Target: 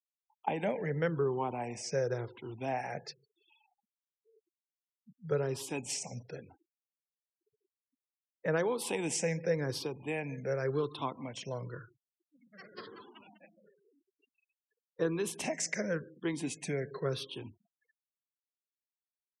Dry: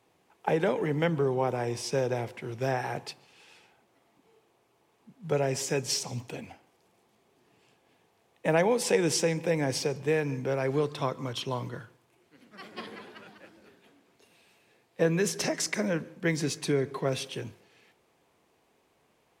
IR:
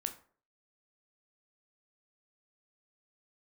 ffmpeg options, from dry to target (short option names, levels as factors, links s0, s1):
-af "afftfilt=real='re*pow(10,11/40*sin(2*PI*(0.58*log(max(b,1)*sr/1024/100)/log(2)-(-0.94)*(pts-256)/sr)))':imag='im*pow(10,11/40*sin(2*PI*(0.58*log(max(b,1)*sr/1024/100)/log(2)-(-0.94)*(pts-256)/sr)))':win_size=1024:overlap=0.75,afftfilt=real='re*gte(hypot(re,im),0.00631)':imag='im*gte(hypot(re,im),0.00631)':win_size=1024:overlap=0.75,volume=0.422"